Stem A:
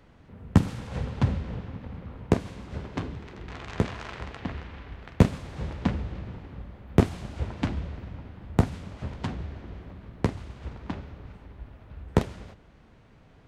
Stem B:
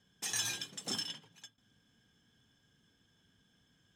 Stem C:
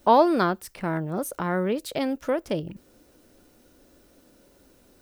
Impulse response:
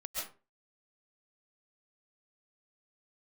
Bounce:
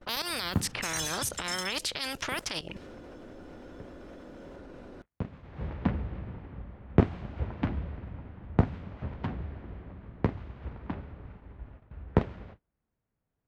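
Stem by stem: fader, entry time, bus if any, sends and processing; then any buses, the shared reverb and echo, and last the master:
−2.0 dB, 0.00 s, no bus, no send, low-pass filter 2,400 Hz 12 dB per octave; automatic ducking −21 dB, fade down 1.50 s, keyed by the third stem
+0.5 dB, 0.60 s, bus A, no send, flanger whose copies keep moving one way rising 0.79 Hz
−7.0 dB, 0.00 s, bus A, no send, low-pass that shuts in the quiet parts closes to 1,300 Hz, open at −20 dBFS; output level in coarse steps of 16 dB; every bin compressed towards the loudest bin 4 to 1
bus A: 0.0 dB, high-shelf EQ 2,300 Hz +9 dB; brickwall limiter −21 dBFS, peak gain reduction 11 dB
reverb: not used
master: noise gate −49 dBFS, range −27 dB

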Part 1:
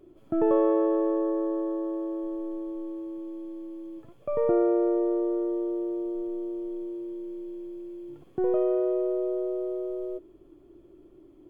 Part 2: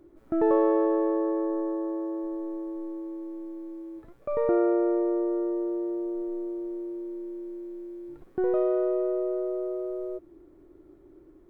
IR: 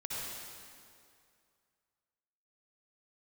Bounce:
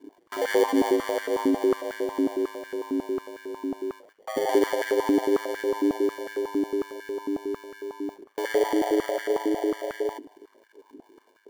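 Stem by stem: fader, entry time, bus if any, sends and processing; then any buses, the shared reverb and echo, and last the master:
+2.5 dB, 0.00 s, no send, adaptive Wiener filter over 25 samples; noise gate with hold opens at −44 dBFS; downward compressor, threshold −28 dBFS, peak gain reduction 9.5 dB
−5.0 dB, 0.00 s, send −23.5 dB, sample-rate reduction 1,300 Hz, jitter 0%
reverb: on, RT60 2.3 s, pre-delay 53 ms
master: ring modulation 52 Hz; high-pass on a step sequencer 11 Hz 280–1,500 Hz

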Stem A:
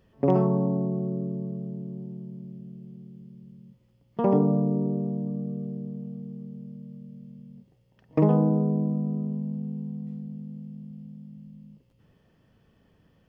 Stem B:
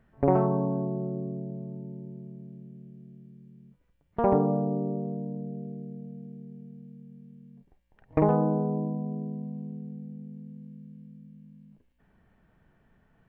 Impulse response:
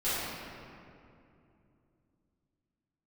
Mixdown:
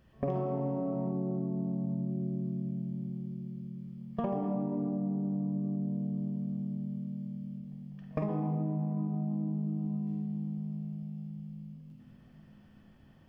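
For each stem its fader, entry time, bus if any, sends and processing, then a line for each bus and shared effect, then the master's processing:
−5.0 dB, 0.00 s, send −4.5 dB, parametric band 460 Hz −10.5 dB 0.34 octaves; every ending faded ahead of time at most 170 dB per second
−7.0 dB, 0.00 s, no send, no processing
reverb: on, RT60 2.7 s, pre-delay 4 ms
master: downward compressor 12 to 1, threshold −29 dBFS, peak gain reduction 14.5 dB

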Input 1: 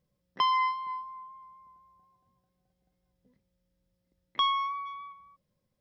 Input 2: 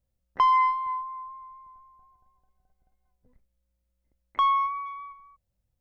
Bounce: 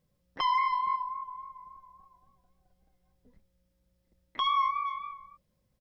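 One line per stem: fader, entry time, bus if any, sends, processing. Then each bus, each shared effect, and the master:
+2.0 dB, 0.00 s, no send, no processing
−1.0 dB, 9.2 ms, no send, pitch vibrato 3.6 Hz 81 cents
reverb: not used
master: brickwall limiter −20.5 dBFS, peak gain reduction 9.5 dB

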